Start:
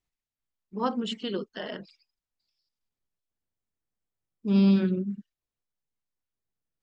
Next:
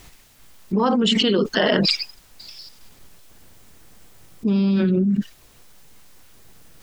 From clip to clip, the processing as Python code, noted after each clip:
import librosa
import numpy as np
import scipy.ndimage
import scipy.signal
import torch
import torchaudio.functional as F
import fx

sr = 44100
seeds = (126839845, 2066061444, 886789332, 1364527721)

y = fx.env_flatten(x, sr, amount_pct=100)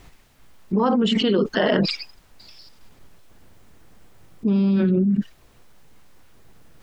y = fx.high_shelf(x, sr, hz=3100.0, db=-10.5)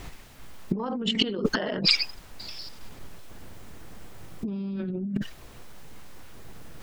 y = fx.over_compress(x, sr, threshold_db=-25.0, ratio=-0.5)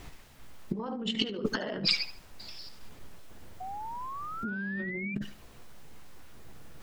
y = fx.doubler(x, sr, ms=14.0, db=-13.0)
y = fx.echo_tape(y, sr, ms=73, feedback_pct=33, wet_db=-12.5, lp_hz=5100.0, drive_db=6.0, wow_cents=5)
y = fx.spec_paint(y, sr, seeds[0], shape='rise', start_s=3.6, length_s=1.55, low_hz=730.0, high_hz=2400.0, level_db=-33.0)
y = y * 10.0 ** (-6.0 / 20.0)